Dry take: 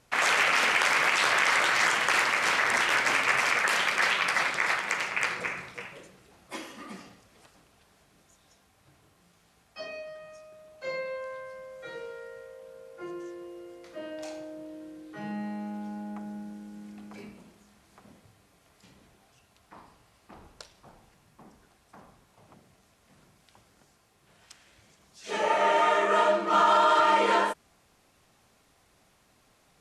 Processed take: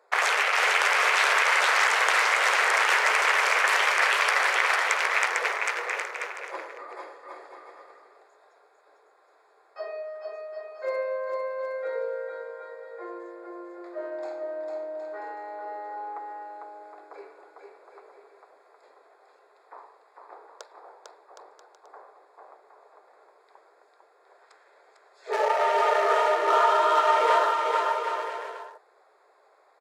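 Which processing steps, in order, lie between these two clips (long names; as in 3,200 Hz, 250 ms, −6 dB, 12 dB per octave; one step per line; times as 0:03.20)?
adaptive Wiener filter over 15 samples
elliptic high-pass filter 410 Hz, stop band 50 dB
downward compressor 6 to 1, threshold −27 dBFS, peak gain reduction 9 dB
on a send: bouncing-ball delay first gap 450 ms, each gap 0.7×, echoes 5
on the sum: level +7 dB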